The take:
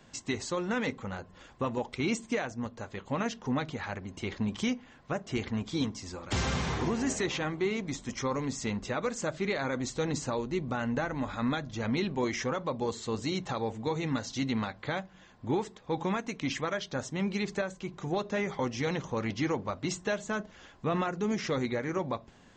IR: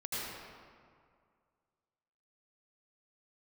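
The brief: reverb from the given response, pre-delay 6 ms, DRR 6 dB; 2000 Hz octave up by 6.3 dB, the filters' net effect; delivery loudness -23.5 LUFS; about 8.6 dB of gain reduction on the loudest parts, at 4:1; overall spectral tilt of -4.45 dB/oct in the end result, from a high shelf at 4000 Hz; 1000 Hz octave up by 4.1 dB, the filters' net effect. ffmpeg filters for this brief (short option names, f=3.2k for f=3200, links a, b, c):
-filter_complex "[0:a]equalizer=f=1k:t=o:g=3.5,equalizer=f=2k:t=o:g=8.5,highshelf=f=4k:g=-8.5,acompressor=threshold=-35dB:ratio=4,asplit=2[a][b];[1:a]atrim=start_sample=2205,adelay=6[c];[b][c]afir=irnorm=-1:irlink=0,volume=-10dB[d];[a][d]amix=inputs=2:normalize=0,volume=14dB"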